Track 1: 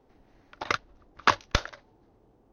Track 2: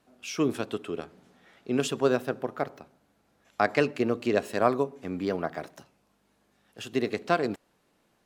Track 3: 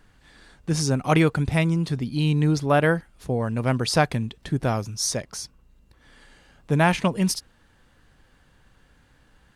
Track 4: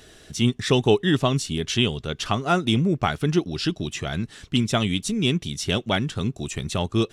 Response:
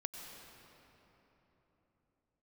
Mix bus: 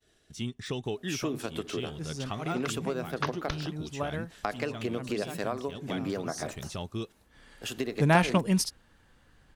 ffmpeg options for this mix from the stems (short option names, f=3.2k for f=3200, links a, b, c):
-filter_complex "[0:a]adelay=1950,volume=-11dB[a];[1:a]highshelf=f=8.9k:g=9,adelay=850,volume=2.5dB[b];[2:a]adelay=1300,volume=-3dB[c];[3:a]deesser=0.6,volume=-11.5dB,asplit=2[d][e];[e]apad=whole_len=478894[f];[c][f]sidechaincompress=threshold=-51dB:ratio=8:attack=28:release=221[g];[b][d]amix=inputs=2:normalize=0,agate=range=-33dB:threshold=-54dB:ratio=3:detection=peak,acompressor=threshold=-29dB:ratio=6,volume=0dB[h];[a][g][h]amix=inputs=3:normalize=0"